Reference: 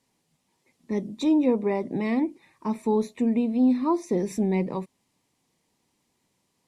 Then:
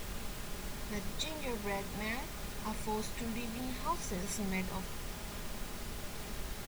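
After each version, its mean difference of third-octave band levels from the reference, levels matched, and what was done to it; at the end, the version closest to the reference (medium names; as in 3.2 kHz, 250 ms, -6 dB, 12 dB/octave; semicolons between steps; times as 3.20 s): 20.0 dB: amplifier tone stack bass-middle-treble 10-0-10; added noise pink -47 dBFS; bass shelf 170 Hz +6 dB; comb 4.9 ms, depth 33%; trim +2 dB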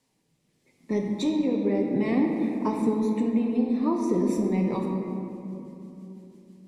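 6.5 dB: compression, threshold -24 dBFS, peak gain reduction 7.5 dB; rotary cabinet horn 0.75 Hz, later 6 Hz, at 4.53 s; gain riding 0.5 s; simulated room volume 140 m³, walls hard, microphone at 0.39 m; trim +3 dB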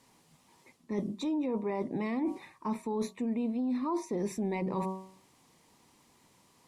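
3.5 dB: peaking EQ 1.1 kHz +5.5 dB 0.81 oct; de-hum 189.3 Hz, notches 6; peak limiter -18.5 dBFS, peak gain reduction 7.5 dB; reverse; compression 6:1, threshold -39 dBFS, peak gain reduction 16 dB; reverse; trim +8 dB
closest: third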